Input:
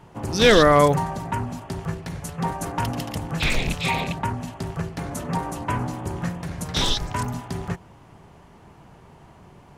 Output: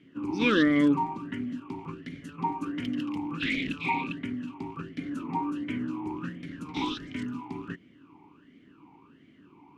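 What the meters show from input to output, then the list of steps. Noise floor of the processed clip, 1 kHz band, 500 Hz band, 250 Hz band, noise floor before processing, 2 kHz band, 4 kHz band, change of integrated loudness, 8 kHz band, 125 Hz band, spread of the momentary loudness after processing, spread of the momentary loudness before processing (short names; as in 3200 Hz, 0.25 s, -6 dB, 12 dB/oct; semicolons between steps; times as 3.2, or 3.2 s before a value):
-58 dBFS, -8.5 dB, -14.0 dB, 0.0 dB, -50 dBFS, -6.0 dB, -12.0 dB, -7.0 dB, under -20 dB, -13.5 dB, 16 LU, 16 LU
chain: vowel sweep i-u 1.4 Hz; gain +7 dB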